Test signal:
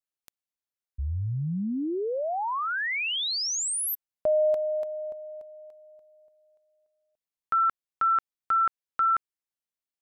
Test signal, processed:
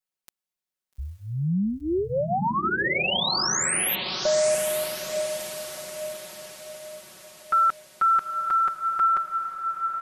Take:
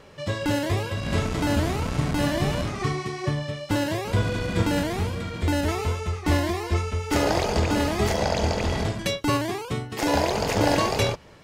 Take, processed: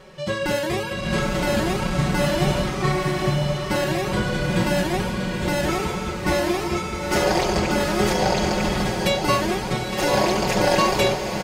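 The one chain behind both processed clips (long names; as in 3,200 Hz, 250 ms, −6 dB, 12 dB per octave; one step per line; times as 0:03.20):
comb filter 5.4 ms, depth 98%
on a send: feedback delay with all-pass diffusion 874 ms, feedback 50%, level −5.5 dB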